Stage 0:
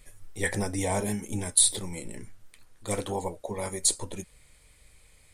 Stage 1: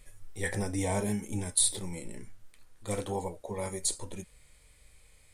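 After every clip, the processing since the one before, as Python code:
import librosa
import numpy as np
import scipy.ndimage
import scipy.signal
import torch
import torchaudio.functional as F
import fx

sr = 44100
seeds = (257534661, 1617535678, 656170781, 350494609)

y = fx.hpss(x, sr, part='percussive', gain_db=-7)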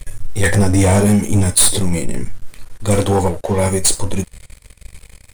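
y = fx.low_shelf(x, sr, hz=170.0, db=7.0)
y = fx.leveller(y, sr, passes=3)
y = y * 10.0 ** (7.5 / 20.0)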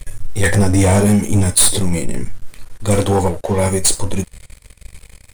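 y = x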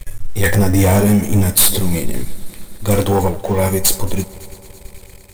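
y = fx.echo_heads(x, sr, ms=111, heads='second and third', feedback_pct=67, wet_db=-23.0)
y = np.repeat(y[::2], 2)[:len(y)]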